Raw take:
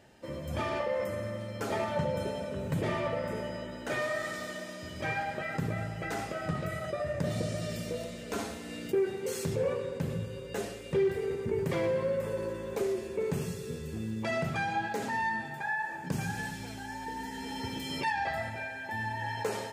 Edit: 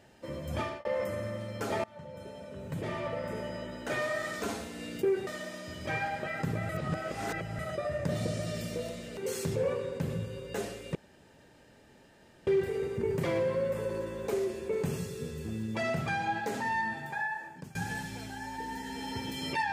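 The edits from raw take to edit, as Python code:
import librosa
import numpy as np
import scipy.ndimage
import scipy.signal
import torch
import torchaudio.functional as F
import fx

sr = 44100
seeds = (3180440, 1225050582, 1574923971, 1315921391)

y = fx.edit(x, sr, fx.fade_out_span(start_s=0.6, length_s=0.25),
    fx.fade_in_from(start_s=1.84, length_s=1.82, floor_db=-23.0),
    fx.reverse_span(start_s=5.84, length_s=0.9),
    fx.move(start_s=8.32, length_s=0.85, to_s=4.42),
    fx.insert_room_tone(at_s=10.95, length_s=1.52),
    fx.fade_out_to(start_s=15.66, length_s=0.57, floor_db=-23.5), tone=tone)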